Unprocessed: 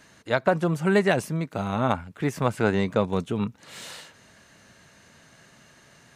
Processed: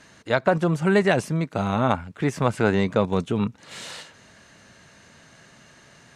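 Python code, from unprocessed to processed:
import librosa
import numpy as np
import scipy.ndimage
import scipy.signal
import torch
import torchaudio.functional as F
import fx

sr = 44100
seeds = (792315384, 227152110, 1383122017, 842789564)

p1 = fx.level_steps(x, sr, step_db=15)
p2 = x + (p1 * 10.0 ** (-2.5 / 20.0))
y = scipy.signal.sosfilt(scipy.signal.butter(2, 9400.0, 'lowpass', fs=sr, output='sos'), p2)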